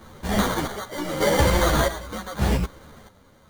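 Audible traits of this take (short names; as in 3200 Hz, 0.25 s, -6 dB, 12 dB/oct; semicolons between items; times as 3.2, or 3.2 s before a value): chopped level 0.83 Hz, depth 65%, duty 55%; aliases and images of a low sample rate 2600 Hz, jitter 0%; a shimmering, thickened sound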